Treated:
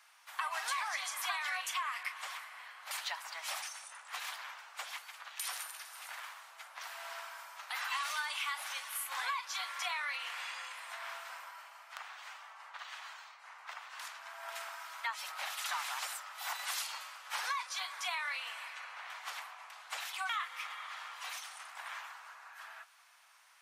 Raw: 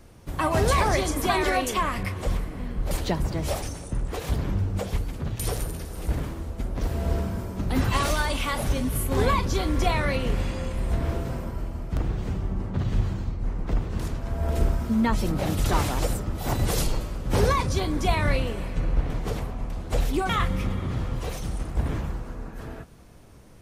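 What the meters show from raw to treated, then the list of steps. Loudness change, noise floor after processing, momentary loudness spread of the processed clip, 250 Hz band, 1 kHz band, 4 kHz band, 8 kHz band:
-12.5 dB, -57 dBFS, 13 LU, under -40 dB, -10.5 dB, -5.0 dB, -7.0 dB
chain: Bessel high-pass 1600 Hz, order 8; high shelf 3500 Hz -10.5 dB; compressor 4:1, threshold -39 dBFS, peak gain reduction 9.5 dB; gain +4.5 dB

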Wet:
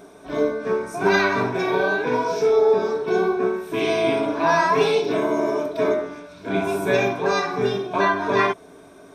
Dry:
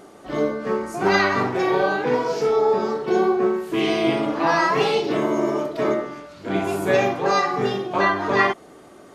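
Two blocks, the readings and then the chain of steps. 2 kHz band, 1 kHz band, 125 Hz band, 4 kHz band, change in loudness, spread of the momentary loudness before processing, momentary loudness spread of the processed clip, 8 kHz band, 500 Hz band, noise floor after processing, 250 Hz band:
0.0 dB, -1.0 dB, -1.0 dB, -1.0 dB, 0.0 dB, 7 LU, 7 LU, 0.0 dB, +1.0 dB, -46 dBFS, -2.0 dB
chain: ripple EQ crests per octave 1.6, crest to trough 10 dB; gain -1.5 dB

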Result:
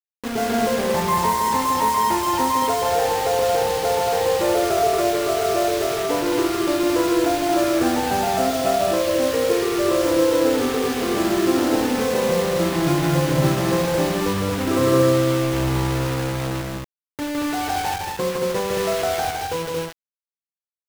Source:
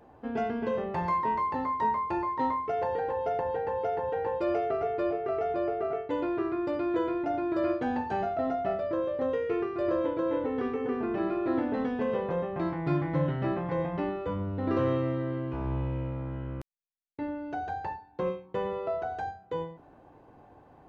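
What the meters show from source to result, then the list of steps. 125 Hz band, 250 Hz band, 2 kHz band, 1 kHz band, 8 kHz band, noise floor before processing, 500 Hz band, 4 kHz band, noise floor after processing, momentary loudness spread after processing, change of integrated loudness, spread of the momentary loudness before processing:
+9.5 dB, +9.5 dB, +13.5 dB, +10.0 dB, n/a, -56 dBFS, +10.0 dB, +25.0 dB, under -85 dBFS, 6 LU, +10.5 dB, 7 LU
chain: bit-crush 6-bit; loudspeakers at several distances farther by 55 m -3 dB, 78 m -3 dB; gain +6.5 dB

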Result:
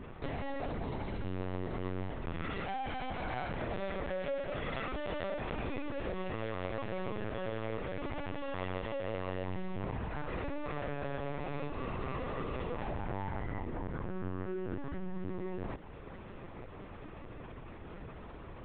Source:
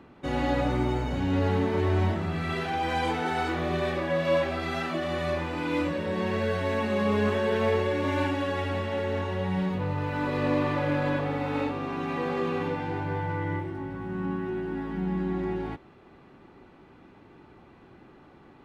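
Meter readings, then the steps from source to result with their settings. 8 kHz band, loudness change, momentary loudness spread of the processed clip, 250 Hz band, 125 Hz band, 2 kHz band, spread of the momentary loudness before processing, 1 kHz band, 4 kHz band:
n/a, -11.5 dB, 11 LU, -12.0 dB, -10.5 dB, -10.5 dB, 6 LU, -10.0 dB, -11.0 dB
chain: compressor 12:1, threshold -40 dBFS, peak gain reduction 20 dB; added harmonics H 7 -41 dB, 8 -33 dB, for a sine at -30.5 dBFS; hard clip -37 dBFS, distortion -22 dB; on a send: thinning echo 0.194 s, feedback 71%, high-pass 250 Hz, level -13.5 dB; on the sum: LPC vocoder at 8 kHz pitch kept; gain +6 dB

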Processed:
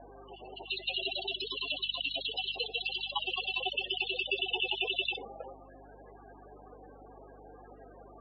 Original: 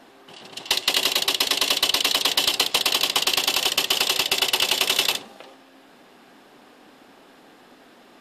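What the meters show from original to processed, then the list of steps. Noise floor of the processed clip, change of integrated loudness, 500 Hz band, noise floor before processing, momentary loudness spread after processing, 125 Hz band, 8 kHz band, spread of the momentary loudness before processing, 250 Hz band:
-53 dBFS, -13.0 dB, -9.0 dB, -52 dBFS, 16 LU, -7.0 dB, under -40 dB, 4 LU, -12.0 dB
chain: loudest bins only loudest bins 16; speaker cabinet 370–3100 Hz, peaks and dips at 460 Hz +7 dB, 710 Hz +3 dB, 1100 Hz +4 dB, 2000 Hz +7 dB, 3100 Hz -8 dB; hum 50 Hz, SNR 21 dB

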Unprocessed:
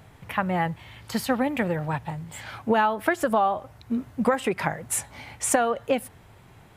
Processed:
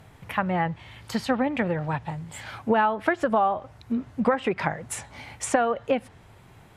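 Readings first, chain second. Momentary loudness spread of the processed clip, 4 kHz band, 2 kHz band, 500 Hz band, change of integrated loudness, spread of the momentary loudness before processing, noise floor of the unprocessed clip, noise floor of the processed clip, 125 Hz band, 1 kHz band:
13 LU, -1.5 dB, -0.5 dB, 0.0 dB, -0.5 dB, 12 LU, -52 dBFS, -52 dBFS, 0.0 dB, 0.0 dB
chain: treble ducked by the level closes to 2900 Hz, closed at -19.5 dBFS

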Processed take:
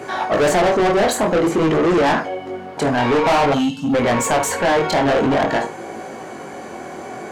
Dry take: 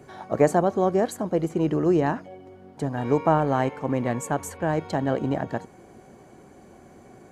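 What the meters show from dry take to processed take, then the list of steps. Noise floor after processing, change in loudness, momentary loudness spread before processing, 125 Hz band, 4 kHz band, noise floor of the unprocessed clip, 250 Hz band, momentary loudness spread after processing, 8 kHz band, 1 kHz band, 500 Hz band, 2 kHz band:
-33 dBFS, +7.5 dB, 11 LU, +2.0 dB, +19.0 dB, -50 dBFS, +6.0 dB, 17 LU, +13.0 dB, +9.0 dB, +7.5 dB, +14.0 dB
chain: chorus 0.5 Hz, delay 17.5 ms, depth 7 ms; spectral gain 3.54–3.94, 300–2600 Hz -29 dB; flutter echo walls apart 8.7 m, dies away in 0.22 s; overdrive pedal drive 32 dB, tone 4100 Hz, clips at -6 dBFS; soft clip -10 dBFS, distortion -23 dB

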